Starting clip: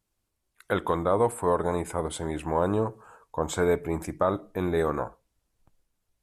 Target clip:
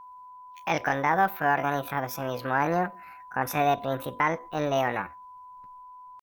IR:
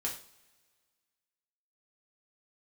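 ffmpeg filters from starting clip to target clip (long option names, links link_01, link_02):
-af "asetrate=72056,aresample=44100,atempo=0.612027,aeval=exprs='val(0)+0.00631*sin(2*PI*1000*n/s)':channel_layout=same"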